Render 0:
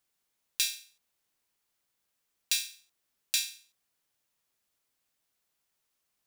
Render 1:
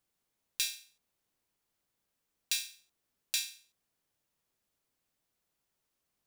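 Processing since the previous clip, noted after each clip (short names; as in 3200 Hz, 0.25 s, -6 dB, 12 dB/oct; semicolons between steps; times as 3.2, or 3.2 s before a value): tilt shelf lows +4 dB, about 740 Hz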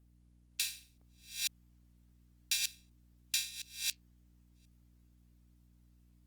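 reverse delay 0.517 s, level -2 dB; hum 60 Hz, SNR 21 dB; gain -1 dB; Opus 24 kbps 48000 Hz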